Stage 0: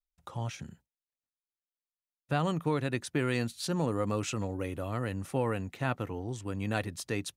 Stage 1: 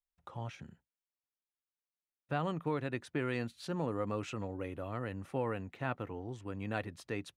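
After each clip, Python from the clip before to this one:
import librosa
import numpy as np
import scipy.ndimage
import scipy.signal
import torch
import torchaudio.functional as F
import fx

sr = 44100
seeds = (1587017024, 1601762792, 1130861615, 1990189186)

y = fx.bass_treble(x, sr, bass_db=-3, treble_db=-12)
y = y * 10.0 ** (-4.0 / 20.0)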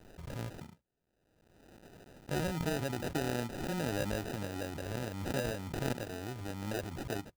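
y = fx.sample_hold(x, sr, seeds[0], rate_hz=1100.0, jitter_pct=0)
y = fx.pre_swell(y, sr, db_per_s=39.0)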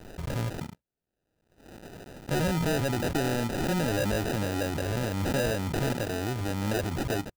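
y = fx.leveller(x, sr, passes=3)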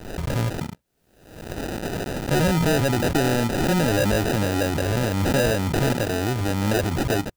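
y = fx.recorder_agc(x, sr, target_db=-30.0, rise_db_per_s=42.0, max_gain_db=30)
y = y * 10.0 ** (7.0 / 20.0)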